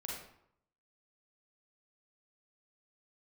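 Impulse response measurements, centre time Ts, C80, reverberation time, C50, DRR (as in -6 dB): 57 ms, 5.0 dB, 0.70 s, 0.0 dB, -3.5 dB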